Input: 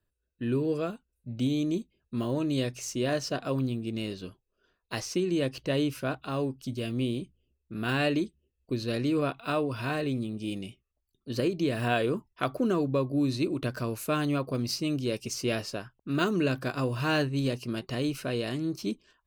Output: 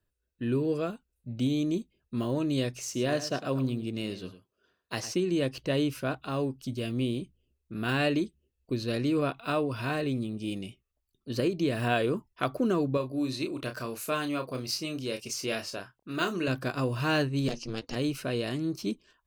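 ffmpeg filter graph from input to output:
-filter_complex "[0:a]asettb=1/sr,asplit=3[s0][s1][s2];[s0]atrim=end=2.824[s3];[s1]atrim=start=2.82:end=5.14,asetpts=PTS-STARTPTS,afade=t=in:d=0.004:c=qsin,afade=t=out:st=2.316:d=0.004:c=qsin,highpass=82,aecho=1:1:105:0.224,atrim=end_sample=102312[s4];[s2]atrim=start=5.136[s5];[s3][s4]acrossfade=d=0.004:c1=hsin:c2=qsin[s6];[s6][s5]acrossfade=d=0.004:c1=qsin:c2=hsin,asettb=1/sr,asplit=3[s7][s8][s9];[s7]atrim=end=12.974[s10];[s8]atrim=start=12.97:end=16.48,asetpts=PTS-STARTPTS,afade=t=in:d=0.004:c=qsin,afade=t=out:st=3.506:d=0.004:c=qsin,lowshelf=f=370:g=-9,asplit=2[s11][s12];[s12]adelay=31,volume=0.422[s13];[s11][s13]amix=inputs=2:normalize=0,atrim=end_sample=154791[s14];[s9]atrim=start=16.476[s15];[s10][s14]acrossfade=d=0.004:c1=hsin:c2=qsin[s16];[s16][s15]acrossfade=d=0.004:c1=qsin:c2=hsin,asettb=1/sr,asplit=3[s17][s18][s19];[s17]atrim=end=17.484[s20];[s18]atrim=start=17.48:end=17.96,asetpts=PTS-STARTPTS,afade=t=in:d=0.004:c=qsin,afade=t=out:st=0.476:d=0.004:c=qsin,lowpass=f=6000:t=q:w=4.7,aeval=exprs='0.075*(abs(mod(val(0)/0.075+3,4)-2)-1)':c=same,aeval=exprs='val(0)*sin(2*PI*110*n/s)':c=same[s21];[s19]atrim=start=17.956[s22];[s20][s21]acrossfade=d=0.004:c1=hsin:c2=qsin[s23];[s23][s22]acrossfade=d=0.004:c1=qsin:c2=hsin"

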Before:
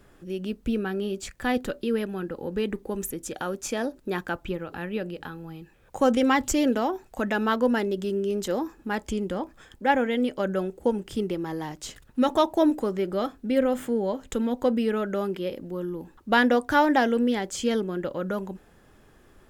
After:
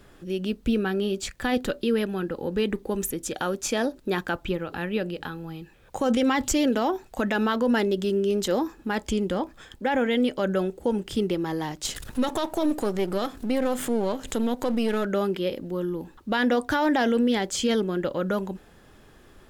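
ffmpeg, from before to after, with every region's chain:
-filter_complex "[0:a]asettb=1/sr,asplit=3[s0][s1][s2];[s0]atrim=end=11.854[s3];[s1]atrim=start=11.85:end=15.05,asetpts=PTS-STARTPTS,afade=t=in:d=0.004:c=qsin,afade=t=out:st=3.196:d=0.004:c=qsin,aeval=exprs='if(lt(val(0),0),0.447*val(0),val(0))':c=same,equalizer=f=10000:w=0.61:g=6.5,acompressor=mode=upward:threshold=0.0501:ratio=2.5:attack=3.2:release=140:knee=2.83:detection=peak[s4];[s2]atrim=start=15.046[s5];[s3][s4]acrossfade=d=0.004:c1=hsin:c2=qsin[s6];[s6][s5]acrossfade=d=0.004:c1=qsin:c2=hsin,equalizer=f=3800:t=o:w=0.99:g=4,alimiter=limit=0.126:level=0:latency=1:release=25,volume=1.41"

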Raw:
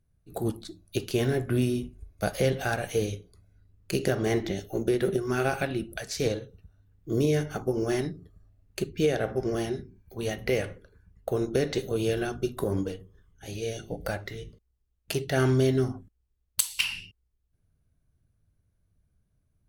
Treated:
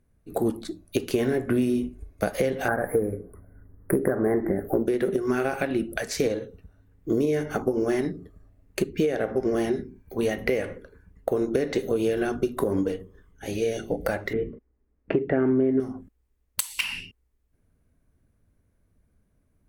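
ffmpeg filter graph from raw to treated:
-filter_complex "[0:a]asettb=1/sr,asplit=3[s0][s1][s2];[s0]atrim=end=2.684[s3];[s1]atrim=start=2.68:end=4.86,asetpts=PTS-STARTPTS,afade=t=in:d=0.004:c=qsin,afade=t=out:st=2.176:d=0.004:c=qsin,acontrast=48,asoftclip=type=hard:threshold=0.299,asuperstop=centerf=4500:order=12:qfactor=0.56[s4];[s2]atrim=start=4.856[s5];[s3][s4]acrossfade=d=0.004:c1=hsin:c2=qsin[s6];[s6][s5]acrossfade=d=0.004:c1=qsin:c2=hsin,asettb=1/sr,asplit=3[s7][s8][s9];[s7]atrim=end=14.334[s10];[s8]atrim=start=14.33:end=15.8,asetpts=PTS-STARTPTS,afade=t=in:d=0.004:c=qsin,afade=t=out:st=1.466:d=0.004:c=qsin,lowpass=f=2200:w=0.5412,lowpass=f=2200:w=1.3066,equalizer=f=290:w=0.68:g=8.5[s11];[s9]atrim=start=15.796[s12];[s10][s11]acrossfade=d=0.004:c1=hsin:c2=qsin[s13];[s13][s12]acrossfade=d=0.004:c1=qsin:c2=hsin,equalizer=f=125:t=o:w=1:g=-5,equalizer=f=250:t=o:w=1:g=9,equalizer=f=500:t=o:w=1:g=8,equalizer=f=1000:t=o:w=1:g=7,equalizer=f=2000:t=o:w=1:g=9,equalizer=f=8000:t=o:w=1:g=3,equalizer=f=16000:t=o:w=1:g=7,acompressor=threshold=0.0891:ratio=6,lowshelf=f=270:g=6.5,volume=0.794"

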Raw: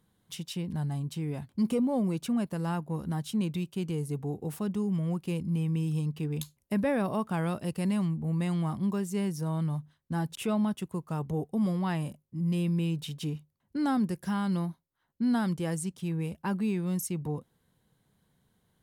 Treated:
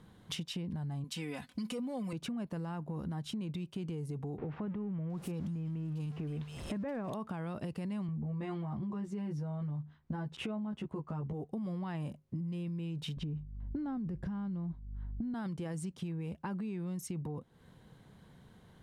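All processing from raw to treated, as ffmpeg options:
-filter_complex "[0:a]asettb=1/sr,asplit=3[s0][s1][s2];[s0]atrim=end=1.044[s3];[s1]atrim=start=1.04:end=2.13,asetpts=PTS-STARTPTS,afade=t=in:d=0.004:c=qsin,afade=t=out:st=1.086:d=0.004:c=qsin,tiltshelf=f=1200:g=-9,aecho=1:1:4:0.74,atrim=end_sample=48069[s4];[s2]atrim=start=2.126[s5];[s3][s4]acrossfade=d=0.004:c1=hsin:c2=qsin[s6];[s6][s5]acrossfade=d=0.004:c1=qsin:c2=hsin,asettb=1/sr,asplit=3[s7][s8][s9];[s7]atrim=end=4.384[s10];[s8]atrim=start=4.38:end=7.14,asetpts=PTS-STARTPTS,afade=t=in:d=0.004:c=qsin,afade=t=out:st=2.756:d=0.004:c=qsin,aeval=exprs='val(0)+0.5*0.00668*sgn(val(0))':c=same,acrossover=split=2700[s11][s12];[s12]adelay=720[s13];[s11][s13]amix=inputs=2:normalize=0,atrim=end_sample=121716[s14];[s9]atrim=start=7.136[s15];[s10][s14]acrossfade=d=0.004:c1=hsin:c2=qsin[s16];[s16][s15]acrossfade=d=0.004:c1=qsin:c2=hsin,asettb=1/sr,asplit=3[s17][s18][s19];[s17]atrim=end=8.074[s20];[s18]atrim=start=8.07:end=11.33,asetpts=PTS-STARTPTS,afade=t=in:d=0.004:c=qsin,afade=t=out:st=3.256:d=0.004:c=qsin,aemphasis=mode=reproduction:type=75kf,asplit=2[s21][s22];[s22]adelay=14,volume=0.75[s23];[s21][s23]amix=inputs=2:normalize=0,atrim=end_sample=143766[s24];[s19]atrim=start=11.326[s25];[s20][s24]acrossfade=d=0.004:c1=hsin:c2=qsin[s26];[s26][s25]acrossfade=d=0.004:c1=qsin:c2=hsin,asettb=1/sr,asplit=3[s27][s28][s29];[s27]atrim=end=13.174[s30];[s28]atrim=start=13.17:end=15.34,asetpts=PTS-STARTPTS,afade=t=in:d=0.004:c=qsin,afade=t=out:st=2.166:d=0.004:c=qsin,aeval=exprs='val(0)+0.000631*(sin(2*PI*50*n/s)+sin(2*PI*2*50*n/s)/2+sin(2*PI*3*50*n/s)/3+sin(2*PI*4*50*n/s)/4+sin(2*PI*5*50*n/s)/5)':c=same,aemphasis=mode=reproduction:type=riaa[s31];[s29]atrim=start=15.336[s32];[s30][s31]acrossfade=d=0.004:c1=hsin:c2=qsin[s33];[s33][s32]acrossfade=d=0.004:c1=qsin:c2=hsin,aemphasis=mode=reproduction:type=50fm,alimiter=level_in=1.88:limit=0.0631:level=0:latency=1:release=26,volume=0.531,acompressor=threshold=0.00316:ratio=6,volume=4.22"

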